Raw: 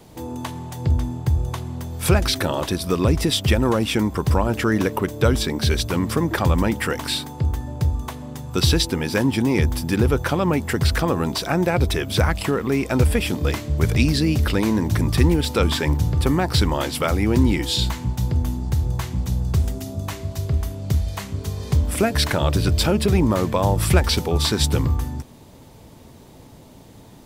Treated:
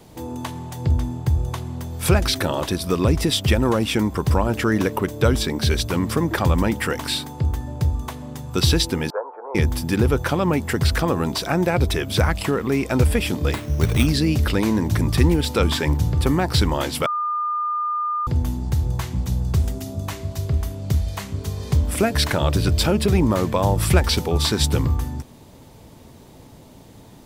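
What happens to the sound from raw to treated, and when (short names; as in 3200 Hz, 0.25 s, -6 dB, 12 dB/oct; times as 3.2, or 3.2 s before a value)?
9.1–9.55 Chebyshev band-pass 450–1400 Hz, order 4
13.53–14.07 sample-rate reducer 5900 Hz
17.06–18.27 bleep 1210 Hz -20.5 dBFS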